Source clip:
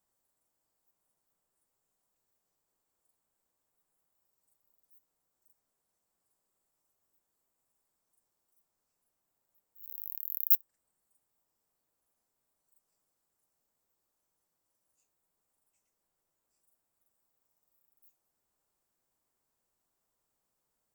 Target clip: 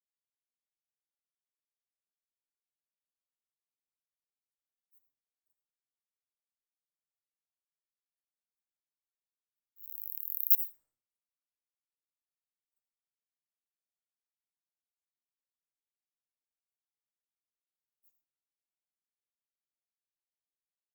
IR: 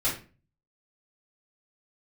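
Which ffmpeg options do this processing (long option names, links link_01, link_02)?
-filter_complex "[0:a]agate=range=-33dB:threshold=-57dB:ratio=3:detection=peak,asplit=2[link_01][link_02];[1:a]atrim=start_sample=2205,adelay=72[link_03];[link_02][link_03]afir=irnorm=-1:irlink=0,volume=-18dB[link_04];[link_01][link_04]amix=inputs=2:normalize=0"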